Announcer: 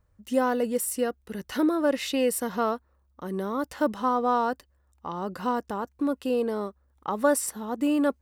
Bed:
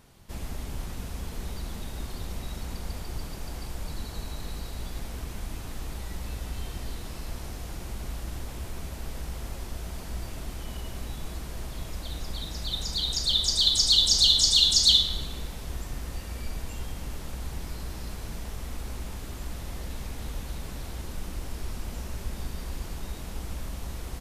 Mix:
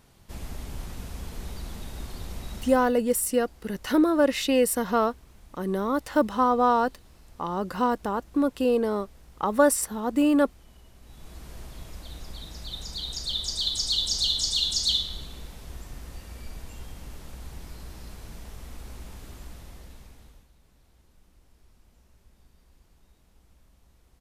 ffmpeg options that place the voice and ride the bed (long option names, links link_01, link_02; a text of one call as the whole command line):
ffmpeg -i stem1.wav -i stem2.wav -filter_complex "[0:a]adelay=2350,volume=3dB[link_01];[1:a]volume=9.5dB,afade=type=out:start_time=2.58:duration=0.35:silence=0.177828,afade=type=in:start_time=11.01:duration=0.49:silence=0.281838,afade=type=out:start_time=19.31:duration=1.18:silence=0.112202[link_02];[link_01][link_02]amix=inputs=2:normalize=0" out.wav